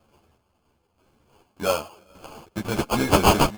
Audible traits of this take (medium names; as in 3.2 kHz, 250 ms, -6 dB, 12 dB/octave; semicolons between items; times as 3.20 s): chopped level 0.96 Hz, depth 60%, duty 35%; aliases and images of a low sample rate 1.9 kHz, jitter 0%; a shimmering, thickened sound